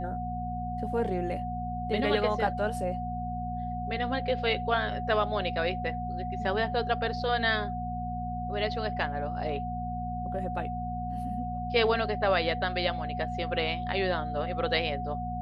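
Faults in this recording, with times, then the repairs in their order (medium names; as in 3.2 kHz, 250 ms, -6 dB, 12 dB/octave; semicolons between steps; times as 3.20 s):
hum 60 Hz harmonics 4 -36 dBFS
whine 730 Hz -34 dBFS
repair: de-hum 60 Hz, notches 4; band-stop 730 Hz, Q 30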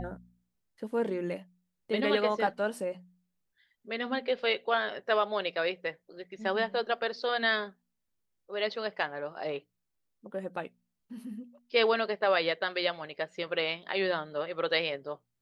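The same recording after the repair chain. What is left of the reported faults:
nothing left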